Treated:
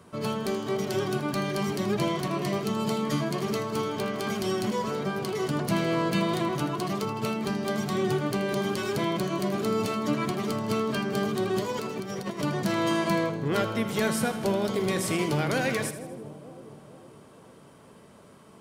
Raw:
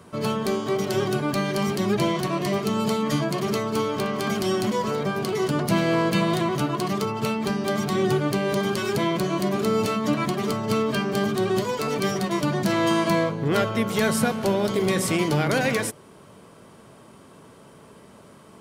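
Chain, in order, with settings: 11.72–12.42 s: compressor with a negative ratio -29 dBFS, ratio -0.5; on a send: two-band feedback delay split 770 Hz, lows 458 ms, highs 80 ms, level -12.5 dB; on the sum: trim -4.5 dB

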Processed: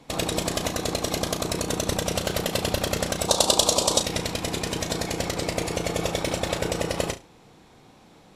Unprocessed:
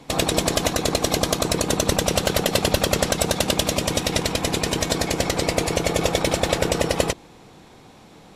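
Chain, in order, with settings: 3.28–4.00 s: graphic EQ 125/500/1000/2000/4000/8000 Hz -7/+5/+11/-11/+10/+10 dB; on a send: flutter echo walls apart 6 m, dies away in 0.23 s; on the sum: trim -6 dB

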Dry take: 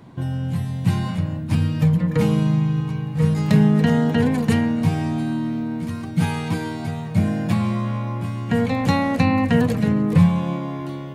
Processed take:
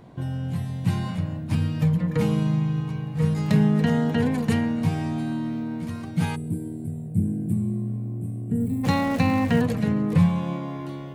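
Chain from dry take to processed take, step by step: 8.60–9.60 s: jump at every zero crossing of -29.5 dBFS; 6.36–8.84 s: time-frequency box 460–7400 Hz -26 dB; mains buzz 50 Hz, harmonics 15, -51 dBFS 0 dB/octave; trim -4 dB

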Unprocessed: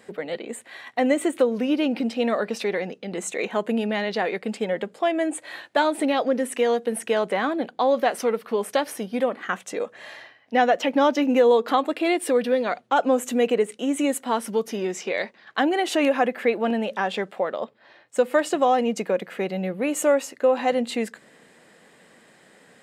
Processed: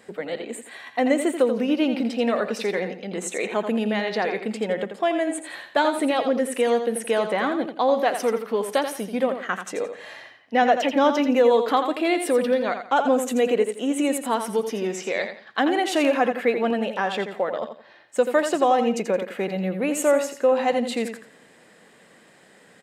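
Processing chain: feedback delay 85 ms, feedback 27%, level -8.5 dB

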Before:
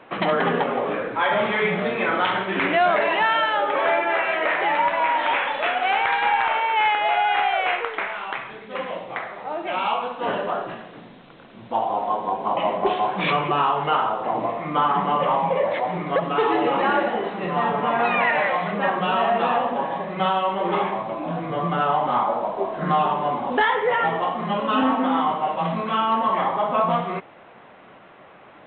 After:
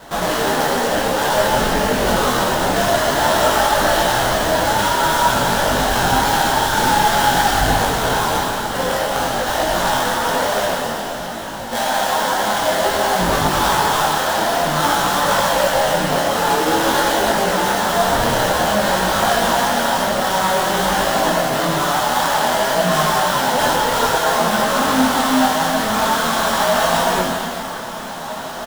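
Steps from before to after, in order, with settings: high-pass 180 Hz 12 dB/octave; band-stop 730 Hz, Q 12; comb 1.3 ms, depth 43%; in parallel at +1 dB: compressor with a negative ratio -29 dBFS, ratio -1; on the sum: sample-rate reducer 2.4 kHz, jitter 20%; echo that smears into a reverb 1624 ms, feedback 46%, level -13 dB; plate-style reverb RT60 3 s, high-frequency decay 0.95×, DRR -3.5 dB; detune thickener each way 18 cents

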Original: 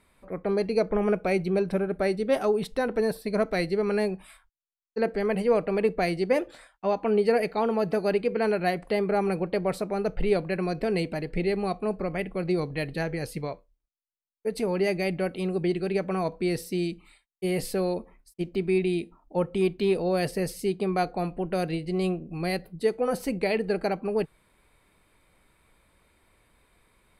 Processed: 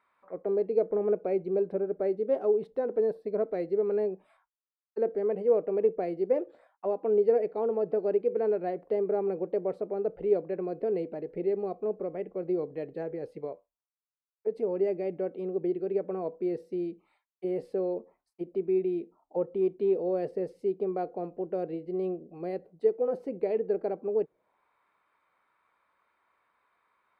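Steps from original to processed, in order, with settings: auto-wah 440–1200 Hz, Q 2.1, down, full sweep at -28.5 dBFS

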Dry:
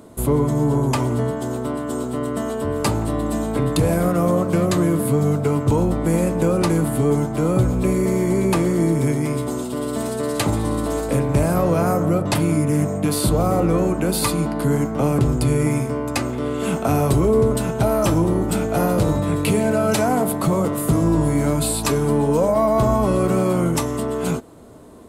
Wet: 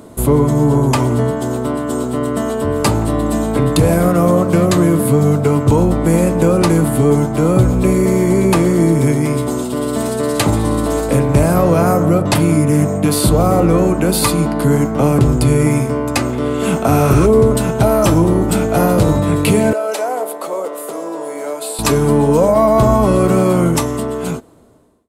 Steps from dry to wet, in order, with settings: fade out at the end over 1.41 s; 16.93–17.23 s: spectral replace 1.2–11 kHz before; 19.73–21.79 s: ladder high-pass 400 Hz, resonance 40%; trim +6 dB

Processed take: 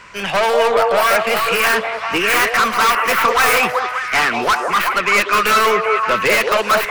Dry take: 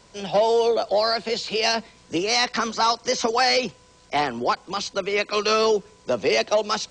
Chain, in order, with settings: tracing distortion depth 0.45 ms; high-order bell 1.7 kHz +15.5 dB; saturation -15.5 dBFS, distortion -7 dB; on a send: repeats whose band climbs or falls 192 ms, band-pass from 580 Hz, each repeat 0.7 oct, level 0 dB; on the sum: trim +4.5 dB

